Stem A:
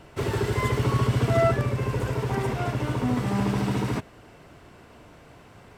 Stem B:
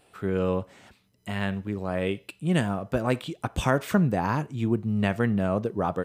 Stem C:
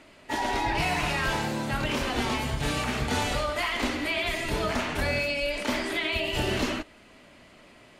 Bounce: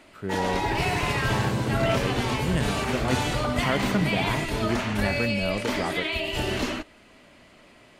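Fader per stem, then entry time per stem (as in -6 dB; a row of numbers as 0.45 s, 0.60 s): -5.0 dB, -3.5 dB, 0.0 dB; 0.45 s, 0.00 s, 0.00 s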